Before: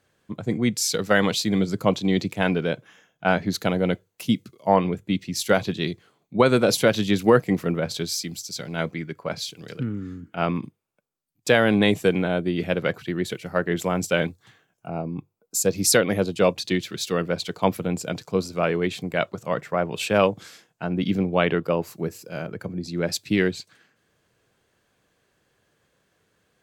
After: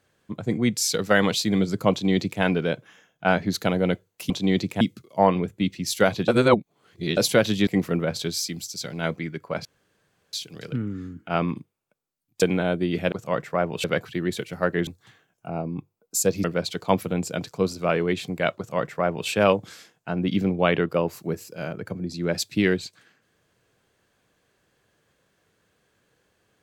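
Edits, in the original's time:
1.91–2.42 s: copy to 4.30 s
5.77–6.66 s: reverse
7.16–7.42 s: delete
9.40 s: insert room tone 0.68 s
11.49–12.07 s: delete
13.80–14.27 s: delete
15.84–17.18 s: delete
19.31–20.03 s: copy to 12.77 s

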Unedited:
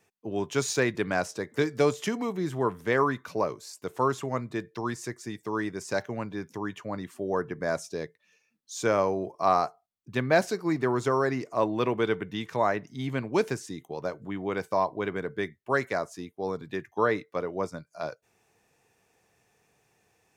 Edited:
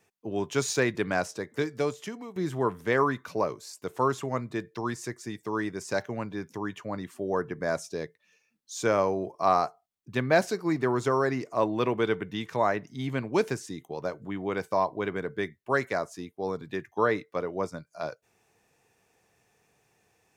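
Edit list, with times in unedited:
1.17–2.36 s: fade out, to -13 dB

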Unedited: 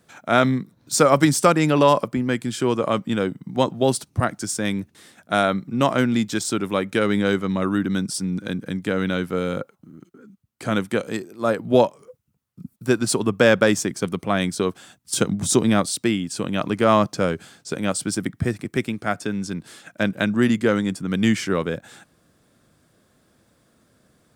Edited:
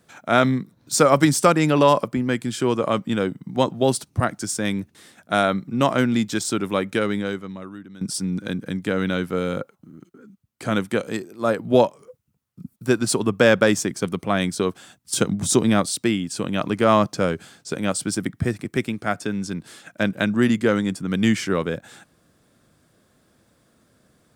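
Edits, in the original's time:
6.89–8.01 s: fade out quadratic, to -19.5 dB

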